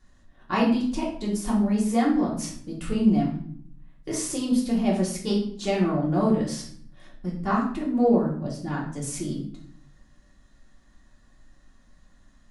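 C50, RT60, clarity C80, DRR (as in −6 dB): 5.5 dB, 0.60 s, 9.5 dB, −4.0 dB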